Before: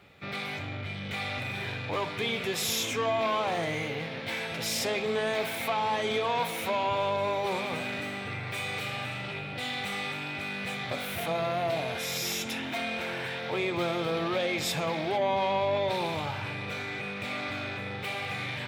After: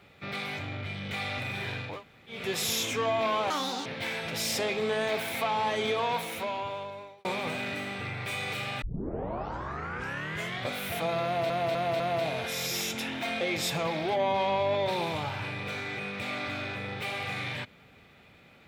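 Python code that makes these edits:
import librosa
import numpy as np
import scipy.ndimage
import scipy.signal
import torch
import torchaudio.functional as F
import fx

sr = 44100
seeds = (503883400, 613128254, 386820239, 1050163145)

y = fx.edit(x, sr, fx.room_tone_fill(start_s=1.92, length_s=0.46, crossfade_s=0.24),
    fx.speed_span(start_s=3.5, length_s=0.62, speed=1.73),
    fx.fade_out_span(start_s=6.25, length_s=1.26),
    fx.tape_start(start_s=9.08, length_s=1.88),
    fx.repeat(start_s=11.51, length_s=0.25, count=4),
    fx.cut(start_s=12.92, length_s=1.51), tone=tone)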